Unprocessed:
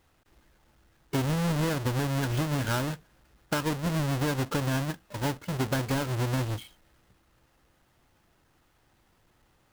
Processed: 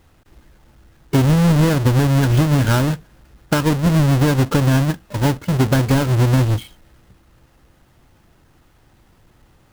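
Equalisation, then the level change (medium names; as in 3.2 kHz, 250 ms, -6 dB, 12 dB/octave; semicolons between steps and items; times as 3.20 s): bass shelf 340 Hz +7 dB; +8.5 dB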